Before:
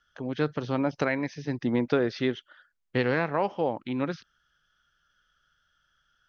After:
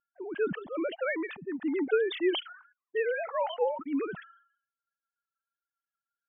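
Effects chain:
three sine waves on the formant tracks
reverb reduction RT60 1.3 s
low-pass that shuts in the quiet parts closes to 440 Hz, open at −22 dBFS
level that may fall only so fast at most 100 dB per second
level −2.5 dB

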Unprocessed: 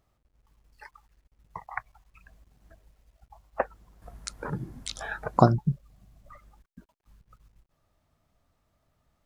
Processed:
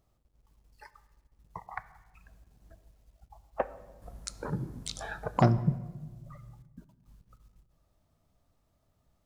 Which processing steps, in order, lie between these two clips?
parametric band 1,800 Hz −6 dB 1.8 octaves
soft clipping −14 dBFS, distortion −11 dB
on a send: convolution reverb RT60 1.3 s, pre-delay 10 ms, DRR 14 dB

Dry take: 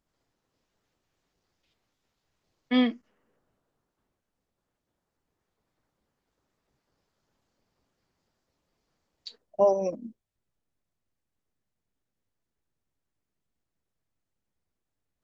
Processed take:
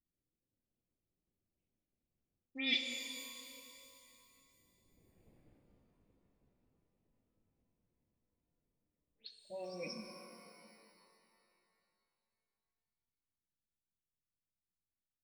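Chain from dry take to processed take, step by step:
every frequency bin delayed by itself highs late, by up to 175 ms
source passing by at 0:05.27, 21 m/s, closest 5.4 metres
low-pass that shuts in the quiet parts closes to 380 Hz, open at −56 dBFS
reversed playback
downward compressor 5 to 1, threshold −59 dBFS, peak gain reduction 17.5 dB
reversed playback
high shelf with overshoot 1,700 Hz +12 dB, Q 3
reverb with rising layers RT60 2.7 s, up +12 semitones, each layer −8 dB, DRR 5 dB
level +15.5 dB

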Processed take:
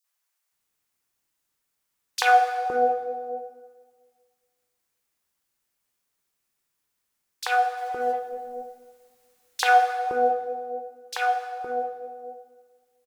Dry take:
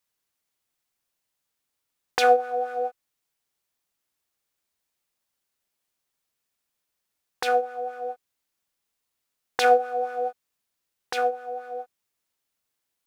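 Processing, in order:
0:07.77–0:09.63: mu-law and A-law mismatch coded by mu
three-band delay without the direct sound highs, mids, lows 40/520 ms, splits 580/3,600 Hz
dense smooth reverb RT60 1.6 s, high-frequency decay 0.85×, DRR 7 dB
level +2.5 dB

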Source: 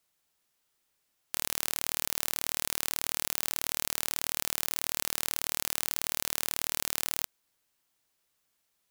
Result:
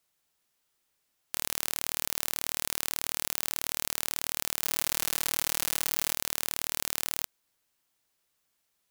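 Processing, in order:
0:04.63–0:06.13: comb filter 6.1 ms, depth 81%

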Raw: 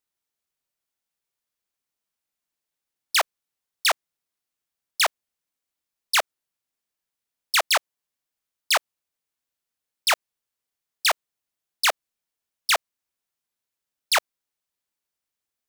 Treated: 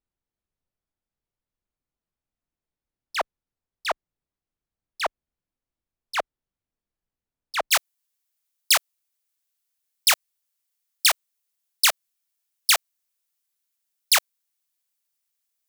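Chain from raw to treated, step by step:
spectral tilt −4 dB per octave, from 0:07.71 +3 dB per octave
level −3 dB

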